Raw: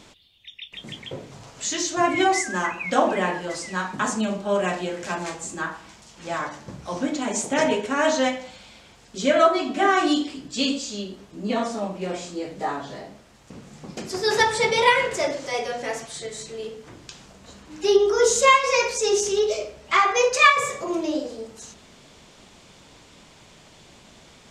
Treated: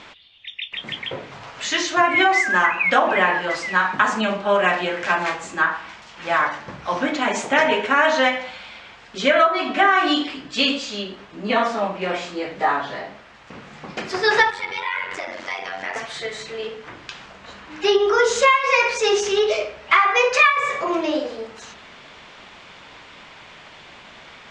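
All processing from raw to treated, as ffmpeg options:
-filter_complex "[0:a]asettb=1/sr,asplit=3[a][b][c];[a]atrim=end=14.504[d];[b]atrim=start=14.5:end=15.96,asetpts=PTS-STARTPTS,afade=t=in:d=0.004:c=qsin,afade=t=out:st=1.456:d=0.004:c=qsin,acompressor=threshold=-28dB:ratio=12:attack=3.2:release=140:knee=1:detection=peak,equalizer=f=500:t=o:w=0.23:g=-15,aeval=exprs='val(0)*sin(2*PI*46*n/s)':c=same[e];[c]atrim=start=15.956[f];[d][e]acrossfade=d=0.004:c1=hsin:c2=qsin[g];[g][f]acrossfade=d=0.004:c1=qsin:c2=hsin,lowpass=2k,tiltshelf=f=820:g=-10,acompressor=threshold=-21dB:ratio=6,volume=8.5dB"

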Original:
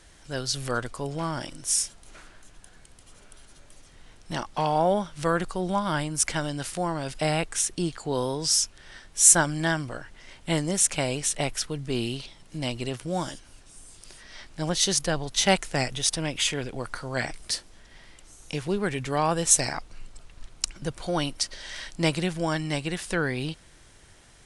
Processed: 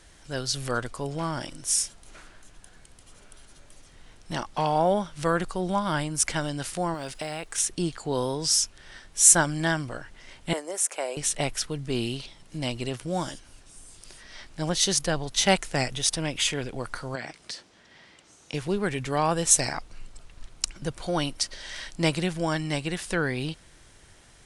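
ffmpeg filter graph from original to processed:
-filter_complex "[0:a]asettb=1/sr,asplit=3[a][b][c];[a]atrim=end=6.944[d];[b]atrim=start=6.94:end=7.58,asetpts=PTS-STARTPTS,afade=t=in:d=0.004:c=qsin,afade=t=out:st=0.636:d=0.004:c=qsin,bass=f=250:g=-6,treble=f=4k:g=1,acompressor=threshold=-28dB:ratio=10:attack=3.2:release=140:knee=1:detection=peak,acrusher=bits=8:mode=log:mix=0:aa=0.000001[e];[c]atrim=start=7.576[f];[d][e]acrossfade=d=0.004:c1=hsin:c2=qsin[g];[g][f]acrossfade=d=0.004:c1=qsin:c2=hsin,asettb=1/sr,asplit=3[h][i][j];[h]atrim=end=10.534[k];[i]atrim=start=10.53:end=11.17,asetpts=PTS-STARTPTS,afade=t=in:d=0.004:c=qsin,afade=t=out:st=0.636:d=0.004:c=qsin,highpass=f=420:w=0.5412,highpass=f=420:w=1.3066,equalizer=f=3.8k:t=o:w=1.8:g=-11[l];[j]atrim=start=11.166[m];[k][l]acrossfade=d=0.004:c1=hsin:c2=qsin[n];[n][m]acrossfade=d=0.004:c1=qsin:c2=hsin,asettb=1/sr,asplit=3[o][p][q];[o]atrim=end=17.154[r];[p]atrim=start=17.15:end=18.54,asetpts=PTS-STARTPTS,afade=t=in:d=0.004:c=qsin,afade=t=out:st=1.386:d=0.004:c=qsin,acompressor=threshold=-31dB:ratio=4:attack=3.2:release=140:knee=1:detection=peak,highpass=140,lowpass=6.3k[s];[q]atrim=start=18.536[t];[r][s]acrossfade=d=0.004:c1=hsin:c2=qsin[u];[u][t]acrossfade=d=0.004:c1=qsin:c2=hsin"

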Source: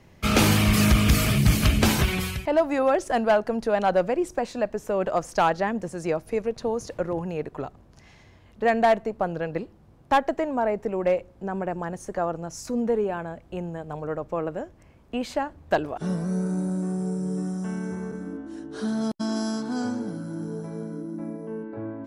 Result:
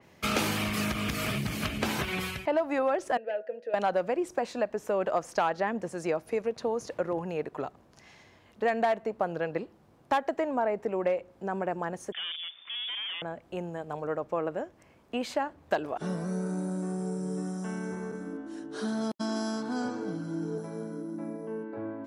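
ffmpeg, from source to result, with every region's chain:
-filter_complex "[0:a]asettb=1/sr,asplit=3[a][b][c];[a]atrim=end=3.174[d];[b]atrim=start=3.17:end=3.74,asetpts=PTS-STARTPTS,afade=t=in:d=0.004:c=qsin,afade=t=out:st=0.566:d=0.004:c=qsin,asplit=3[e][f][g];[e]bandpass=f=530:t=q:w=8,volume=0dB[h];[f]bandpass=f=1.84k:t=q:w=8,volume=-6dB[i];[g]bandpass=f=2.48k:t=q:w=8,volume=-9dB[j];[h][i][j]amix=inputs=3:normalize=0,bandreject=f=161.6:t=h:w=4,bandreject=f=323.2:t=h:w=4,bandreject=f=484.8:t=h:w=4,bandreject=f=646.4:t=h:w=4,bandreject=f=808:t=h:w=4,bandreject=f=969.6:t=h:w=4,bandreject=f=1.1312k:t=h:w=4,bandreject=f=1.2928k:t=h:w=4,bandreject=f=1.4544k:t=h:w=4,bandreject=f=1.616k:t=h:w=4[k];[c]atrim=start=3.736[l];[d][k]acrossfade=d=0.004:c1=hsin:c2=qsin[m];[m][l]acrossfade=d=0.004:c1=qsin:c2=hsin,asettb=1/sr,asplit=3[n][o][p];[n]atrim=end=12.124[q];[o]atrim=start=12.12:end=13.22,asetpts=PTS-STARTPTS,afade=t=in:d=0.004:c=qsin,afade=t=out:st=1.096:d=0.004:c=qsin,volume=33dB,asoftclip=hard,volume=-33dB,lowpass=f=3.1k:t=q:w=0.5098,lowpass=f=3.1k:t=q:w=0.6013,lowpass=f=3.1k:t=q:w=0.9,lowpass=f=3.1k:t=q:w=2.563,afreqshift=-3600[r];[p]atrim=start=13.216[s];[q][r]acrossfade=d=0.004:c1=hsin:c2=qsin[t];[t][s]acrossfade=d=0.004:c1=qsin:c2=hsin,asettb=1/sr,asplit=3[u][v][w];[u]atrim=end=19.884[x];[v]atrim=start=19.88:end=20.58,asetpts=PTS-STARTPTS,afade=t=in:d=0.004:c=qsin,afade=t=out:st=0.696:d=0.004:c=qsin,highpass=110,lowpass=6.9k,aecho=1:1:6.4:0.66,atrim=end_sample=30870[y];[w]atrim=start=20.576[z];[x][y]acrossfade=d=0.004:c1=hsin:c2=qsin[aa];[aa][z]acrossfade=d=0.004:c1=qsin:c2=hsin,acompressor=threshold=-22dB:ratio=6,highpass=f=300:p=1,adynamicequalizer=threshold=0.00355:dfrequency=3900:dqfactor=0.7:tfrequency=3900:tqfactor=0.7:attack=5:release=100:ratio=0.375:range=3.5:mode=cutabove:tftype=highshelf"

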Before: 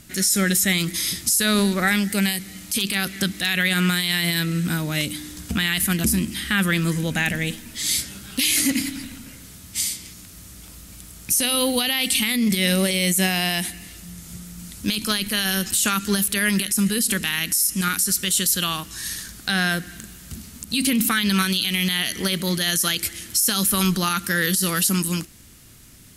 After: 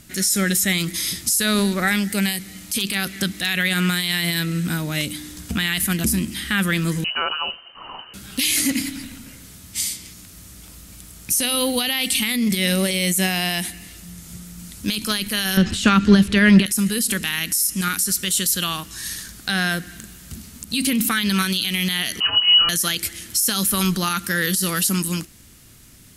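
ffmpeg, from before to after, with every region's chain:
-filter_complex "[0:a]asettb=1/sr,asplit=3[a][b][c];[a]atrim=end=7.044[d];[b]atrim=start=7.04:end=8.14,asetpts=PTS-STARTPTS,afade=t=in:d=0.004:c=qsin,afade=t=out:st=1.096:d=0.004:c=qsin,aeval=exprs='sgn(val(0))*max(abs(val(0))-0.00531,0)':c=same,lowpass=f=2.6k:t=q:w=0.5098,lowpass=f=2.6k:t=q:w=0.6013,lowpass=f=2.6k:t=q:w=0.9,lowpass=f=2.6k:t=q:w=2.563,afreqshift=-3100[e];[c]atrim=start=8.136[f];[d][e]acrossfade=d=0.004:c1=hsin:c2=qsin[g];[g][f]acrossfade=d=0.004:c1=qsin:c2=hsin,asettb=1/sr,asplit=3[h][i][j];[h]atrim=end=15.574[k];[i]atrim=start=15.57:end=16.66,asetpts=PTS-STARTPTS,afade=t=in:d=0.004:c=qsin,afade=t=out:st=1.086:d=0.004:c=qsin,lowpass=3.7k,lowshelf=f=420:g=8,acontrast=25[l];[j]atrim=start=16.656[m];[k][l]acrossfade=d=0.004:c1=hsin:c2=qsin[n];[n][m]acrossfade=d=0.004:c1=qsin:c2=hsin,asettb=1/sr,asplit=3[o][p][q];[o]atrim=end=22.204[r];[p]atrim=start=22.2:end=22.69,asetpts=PTS-STARTPTS,afade=t=in:d=0.004:c=qsin,afade=t=out:st=0.486:d=0.004:c=qsin,lowshelf=f=210:t=q:w=1.5:g=11.5,lowpass=f=2.6k:t=q:w=0.5098,lowpass=f=2.6k:t=q:w=0.6013,lowpass=f=2.6k:t=q:w=0.9,lowpass=f=2.6k:t=q:w=2.563,afreqshift=-3100,asplit=2[s][t];[t]adelay=27,volume=-4.5dB[u];[s][u]amix=inputs=2:normalize=0,atrim=end_sample=21609[v];[q]atrim=start=22.686[w];[r][v]acrossfade=d=0.004:c1=hsin:c2=qsin[x];[x][w]acrossfade=d=0.004:c1=qsin:c2=hsin"

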